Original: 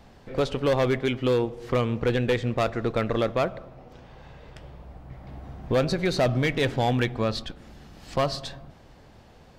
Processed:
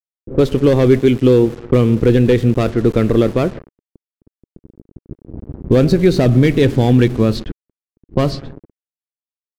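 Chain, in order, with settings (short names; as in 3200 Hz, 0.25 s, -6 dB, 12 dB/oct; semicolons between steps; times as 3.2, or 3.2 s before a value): sample gate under -36 dBFS; resonant low shelf 510 Hz +9 dB, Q 1.5; low-pass opened by the level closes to 310 Hz, open at -14.5 dBFS; gain +4 dB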